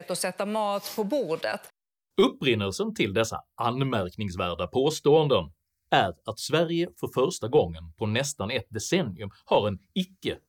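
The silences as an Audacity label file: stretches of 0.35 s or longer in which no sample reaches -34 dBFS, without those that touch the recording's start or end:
1.670000	2.180000	silence
5.450000	5.920000	silence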